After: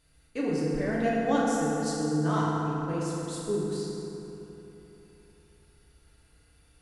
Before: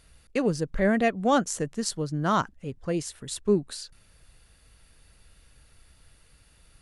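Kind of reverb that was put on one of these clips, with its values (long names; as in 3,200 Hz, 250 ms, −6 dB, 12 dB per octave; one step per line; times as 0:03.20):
feedback delay network reverb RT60 3.4 s, high-frequency decay 0.5×, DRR −7 dB
level −11 dB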